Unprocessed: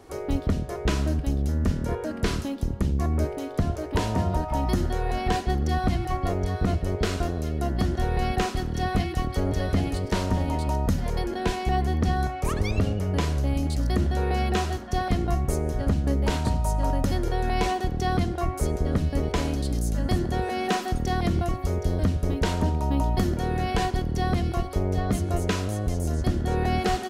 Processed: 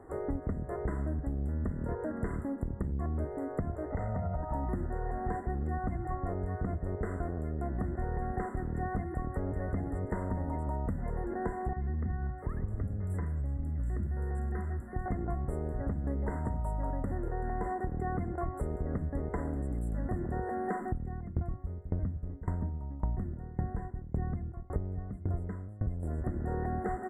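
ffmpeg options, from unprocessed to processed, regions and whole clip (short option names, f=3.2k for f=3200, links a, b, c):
-filter_complex "[0:a]asettb=1/sr,asplit=3[a][b][c];[a]atrim=end=3.904[d];[b]atrim=start=3.9:end=4.43,asetpts=PTS-STARTPTS,afade=t=in:d=0.004:c=qsin,afade=t=out:st=0.526:d=0.004:c=qsin,lowpass=5.3k,aecho=1:1:1.5:0.76,atrim=end_sample=23373,acompressor=threshold=-22dB:ratio=3:attack=3.2:release=140:knee=1:detection=peak[e];[c]atrim=start=4.426[f];[d][e]acrossfade=d=0.004:c1=hsin:c2=qsin[g];[g][f]acrossfade=d=0.004:c1=qsin:c2=hsin,asettb=1/sr,asplit=3[h][i][j];[h]atrim=end=11.734[k];[i]atrim=start=11.73:end=15.06,asetpts=PTS-STARTPTS,afade=t=in:d=0.004:c=qsin,afade=t=out:st=3.326:d=0.004:c=qsin,equalizer=f=720:w=0.61:g=-10.5,acrossover=split=270|3700[l][m][n];[l]adelay=30[o];[n]adelay=650[p];[o][m][p]amix=inputs=3:normalize=0,atrim=end_sample=146853[q];[j]atrim=start=15.056[r];[k][q]acrossfade=d=0.004:c1=hsin:c2=qsin[s];[s][r]acrossfade=d=0.004:c1=qsin:c2=hsin,asettb=1/sr,asplit=3[t][u][v];[t]atrim=end=20.814[w];[u]atrim=start=20.81:end=26.03,asetpts=PTS-STARTPTS,afade=t=in:d=0.004:c=qsin,afade=t=out:st=5.216:d=0.004:c=qsin,bass=f=250:g=10,treble=f=4k:g=-1,aeval=exprs='val(0)*pow(10,-28*if(lt(mod(1.8*n/s,1),2*abs(1.8)/1000),1-mod(1.8*n/s,1)/(2*abs(1.8)/1000),(mod(1.8*n/s,1)-2*abs(1.8)/1000)/(1-2*abs(1.8)/1000))/20)':c=same[x];[v]atrim=start=26.026[y];[w][x]acrossfade=d=0.004:c1=hsin:c2=qsin[z];[z][y]acrossfade=d=0.004:c1=qsin:c2=hsin,aemphasis=mode=reproduction:type=75kf,afftfilt=real='re*(1-between(b*sr/4096,2100,7200))':imag='im*(1-between(b*sr/4096,2100,7200))':win_size=4096:overlap=0.75,acompressor=threshold=-29dB:ratio=4,volume=-2dB"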